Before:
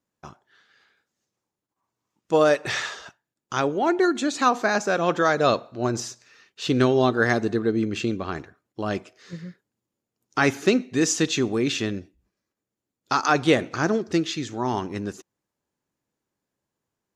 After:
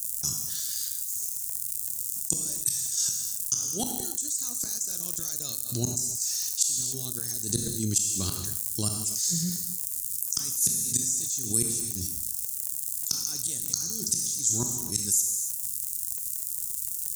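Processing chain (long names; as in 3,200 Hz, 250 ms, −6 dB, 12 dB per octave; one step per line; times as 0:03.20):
spectral tilt +3.5 dB per octave
gate with flip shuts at −16 dBFS, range −34 dB
in parallel at +1.5 dB: output level in coarse steps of 15 dB
on the sum: surface crackle 130 per second −47 dBFS
drawn EQ curve 130 Hz 0 dB, 670 Hz −29 dB, 2,400 Hz −29 dB, 8,300 Hz +14 dB
reverb whose tail is shaped and stops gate 320 ms falling, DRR 10.5 dB
envelope flattener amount 70%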